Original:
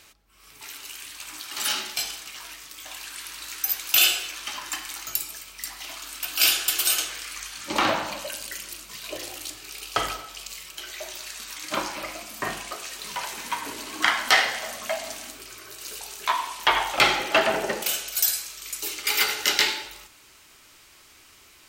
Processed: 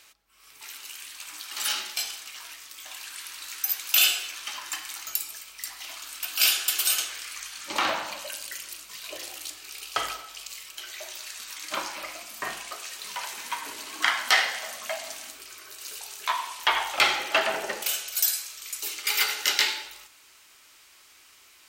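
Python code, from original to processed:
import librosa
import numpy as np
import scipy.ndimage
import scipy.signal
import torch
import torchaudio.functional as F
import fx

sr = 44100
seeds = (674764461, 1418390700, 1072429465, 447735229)

y = fx.low_shelf(x, sr, hz=420.0, db=-12.0)
y = F.gain(torch.from_numpy(y), -1.5).numpy()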